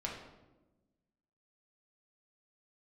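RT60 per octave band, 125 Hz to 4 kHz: 1.6, 1.6, 1.3, 0.95, 0.75, 0.65 seconds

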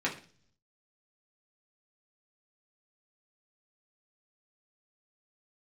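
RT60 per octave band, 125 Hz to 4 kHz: 0.95, 0.70, 0.50, 0.40, 0.40, 0.50 seconds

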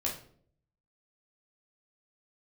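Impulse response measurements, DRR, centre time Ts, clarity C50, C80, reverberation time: −4.5 dB, 25 ms, 8.0 dB, 13.0 dB, 0.55 s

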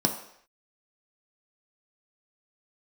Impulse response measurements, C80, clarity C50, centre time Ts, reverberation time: 11.5 dB, 9.0 dB, 18 ms, non-exponential decay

